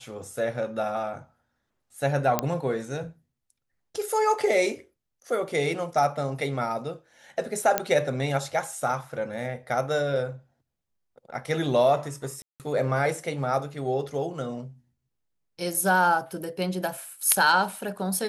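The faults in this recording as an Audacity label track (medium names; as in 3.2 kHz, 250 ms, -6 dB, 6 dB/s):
2.390000	2.390000	pop -7 dBFS
7.780000	7.780000	pop -6 dBFS
12.420000	12.600000	dropout 178 ms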